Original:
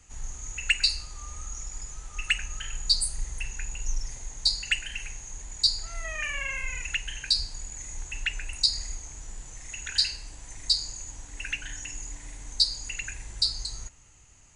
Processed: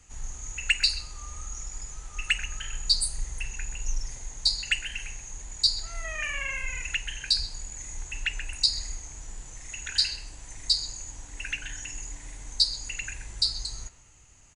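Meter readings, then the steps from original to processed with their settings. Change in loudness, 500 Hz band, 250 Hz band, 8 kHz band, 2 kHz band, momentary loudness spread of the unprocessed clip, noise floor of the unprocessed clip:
0.0 dB, 0.0 dB, 0.0 dB, 0.0 dB, 0.0 dB, 16 LU, -52 dBFS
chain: speakerphone echo 130 ms, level -12 dB

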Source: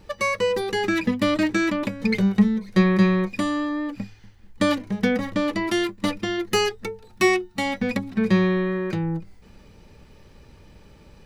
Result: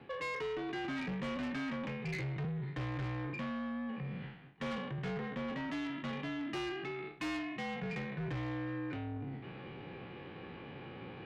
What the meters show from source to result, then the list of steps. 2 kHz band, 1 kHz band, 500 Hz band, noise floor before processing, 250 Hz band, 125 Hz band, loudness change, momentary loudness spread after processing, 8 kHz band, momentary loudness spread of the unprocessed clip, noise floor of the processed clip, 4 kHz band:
-14.5 dB, -14.5 dB, -17.5 dB, -51 dBFS, -17.0 dB, -12.0 dB, -17.0 dB, 10 LU, -23.0 dB, 8 LU, -49 dBFS, -16.5 dB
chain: spectral sustain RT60 0.64 s; mistuned SSB -60 Hz 190–3300 Hz; saturation -24 dBFS, distortion -8 dB; reverse; compression 6:1, threshold -39 dBFS, peak gain reduction 12.5 dB; reverse; peak limiter -40 dBFS, peak gain reduction 7 dB; trim +5 dB

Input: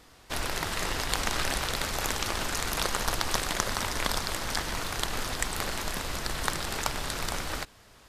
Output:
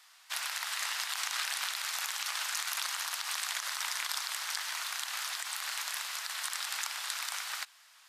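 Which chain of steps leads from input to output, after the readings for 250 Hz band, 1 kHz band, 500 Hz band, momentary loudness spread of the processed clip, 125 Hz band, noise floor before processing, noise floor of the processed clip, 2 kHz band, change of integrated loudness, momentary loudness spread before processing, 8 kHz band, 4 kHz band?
under -40 dB, -7.5 dB, -22.0 dB, 3 LU, under -40 dB, -55 dBFS, -60 dBFS, -3.0 dB, -3.5 dB, 4 LU, -2.0 dB, -2.0 dB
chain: peak limiter -16.5 dBFS, peak gain reduction 11.5 dB; Bessel high-pass 1.4 kHz, order 6

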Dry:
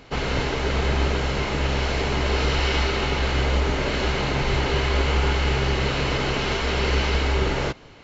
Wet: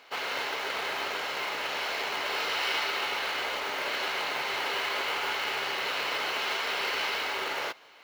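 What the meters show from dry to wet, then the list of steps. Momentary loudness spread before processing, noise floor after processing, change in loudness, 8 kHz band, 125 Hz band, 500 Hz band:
3 LU, -46 dBFS, -6.5 dB, no reading, -36.0 dB, -11.0 dB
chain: band-pass 750–5900 Hz; short-mantissa float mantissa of 2-bit; trim -2.5 dB

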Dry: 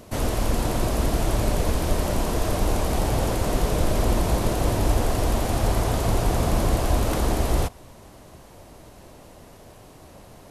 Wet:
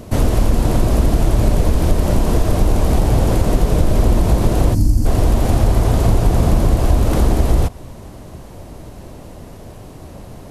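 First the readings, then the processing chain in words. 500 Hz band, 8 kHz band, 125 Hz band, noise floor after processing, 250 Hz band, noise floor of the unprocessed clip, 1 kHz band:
+5.0 dB, +1.5 dB, +9.5 dB, -36 dBFS, +7.5 dB, -47 dBFS, +3.0 dB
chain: bass shelf 420 Hz +9 dB; time-frequency box 4.74–5.06 s, 330–4200 Hz -17 dB; compression 3:1, threshold -15 dBFS, peak gain reduction 7 dB; trim +5 dB

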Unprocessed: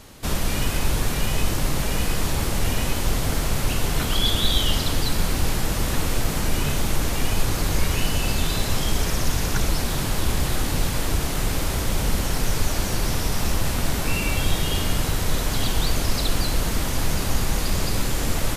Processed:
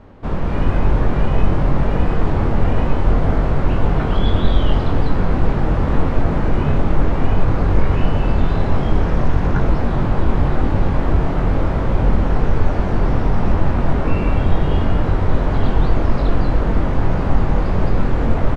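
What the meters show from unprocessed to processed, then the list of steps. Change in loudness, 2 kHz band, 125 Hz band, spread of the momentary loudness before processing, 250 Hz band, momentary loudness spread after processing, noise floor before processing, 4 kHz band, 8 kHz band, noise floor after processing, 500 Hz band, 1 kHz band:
+5.0 dB, -0.5 dB, +8.0 dB, 2 LU, +8.0 dB, 1 LU, -26 dBFS, -11.0 dB, under -20 dB, -19 dBFS, +7.5 dB, +6.0 dB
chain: low-pass 1.2 kHz 12 dB/octave; level rider gain up to 4 dB; doubling 22 ms -5.5 dB; trim +3 dB

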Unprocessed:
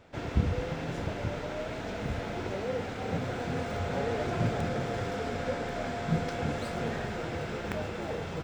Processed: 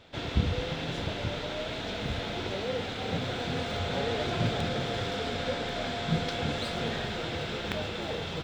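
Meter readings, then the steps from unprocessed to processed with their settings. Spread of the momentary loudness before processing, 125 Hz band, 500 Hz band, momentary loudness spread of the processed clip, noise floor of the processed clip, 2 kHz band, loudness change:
5 LU, 0.0 dB, 0.0 dB, 4 LU, -36 dBFS, +2.5 dB, +1.5 dB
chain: peaking EQ 3.6 kHz +13 dB 0.82 oct

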